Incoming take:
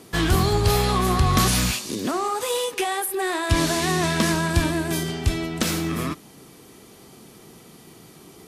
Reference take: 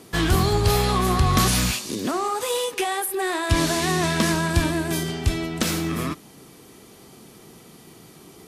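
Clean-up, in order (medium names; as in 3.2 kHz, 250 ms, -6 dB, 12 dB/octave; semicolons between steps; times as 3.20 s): nothing to do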